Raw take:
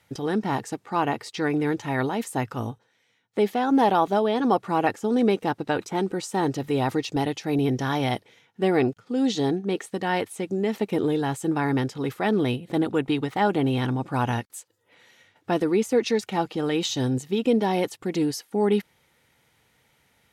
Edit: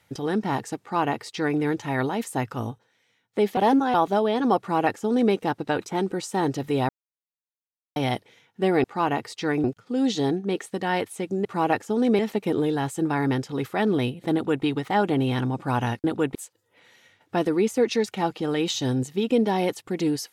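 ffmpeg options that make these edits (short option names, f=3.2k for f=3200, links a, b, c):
-filter_complex "[0:a]asplit=11[a][b][c][d][e][f][g][h][i][j][k];[a]atrim=end=3.572[l];[b]atrim=start=3.568:end=3.942,asetpts=PTS-STARTPTS,areverse[m];[c]atrim=start=3.938:end=6.89,asetpts=PTS-STARTPTS,afade=t=out:st=2.948:d=0.004:c=hsin[n];[d]atrim=start=6.89:end=7.96,asetpts=PTS-STARTPTS,volume=0[o];[e]atrim=start=7.96:end=8.842,asetpts=PTS-STARTPTS,afade=t=in:d=0.004:c=hsin[p];[f]atrim=start=0.798:end=1.602[q];[g]atrim=start=8.838:end=10.652[r];[h]atrim=start=4.588:end=5.332[s];[i]atrim=start=10.648:end=14.502[t];[j]atrim=start=12.788:end=13.102[u];[k]atrim=start=14.498[v];[l][m]acrossfade=d=0.004:c1=hsin:c2=hsin[w];[n][o][p]concat=n=3:v=0:a=1[x];[w][x]acrossfade=d=0.004:c1=hsin:c2=hsin[y];[y][q]acrossfade=d=0.004:c1=hsin:c2=hsin[z];[z][r]acrossfade=d=0.004:c1=hsin:c2=hsin[aa];[aa][s]acrossfade=d=0.004:c1=hsin:c2=hsin[ab];[ab][t]acrossfade=d=0.004:c1=hsin:c2=hsin[ac];[ac][u]acrossfade=d=0.004:c1=hsin:c2=hsin[ad];[ad][v]acrossfade=d=0.004:c1=hsin:c2=hsin"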